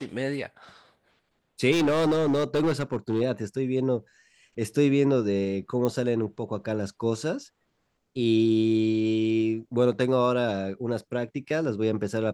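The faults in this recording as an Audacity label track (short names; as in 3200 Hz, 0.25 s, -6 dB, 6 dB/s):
1.710000	3.220000	clipped -20 dBFS
5.850000	5.850000	pop -15 dBFS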